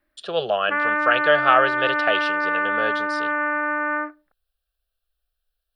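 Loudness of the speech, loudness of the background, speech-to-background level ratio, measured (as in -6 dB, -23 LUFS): -22.5 LUFS, -22.0 LUFS, -0.5 dB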